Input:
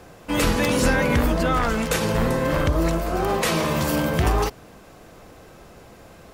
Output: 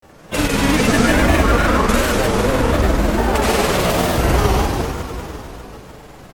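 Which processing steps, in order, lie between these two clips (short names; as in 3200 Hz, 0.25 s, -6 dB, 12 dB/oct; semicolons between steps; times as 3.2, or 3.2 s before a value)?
frequency-shifting echo 87 ms, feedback 39%, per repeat -130 Hz, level -9.5 dB; Schroeder reverb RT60 3.2 s, combs from 31 ms, DRR -6 dB; grains, pitch spread up and down by 3 st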